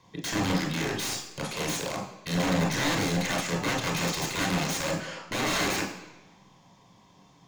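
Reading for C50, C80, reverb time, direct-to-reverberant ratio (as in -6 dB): 5.5 dB, 9.0 dB, 1.1 s, -0.5 dB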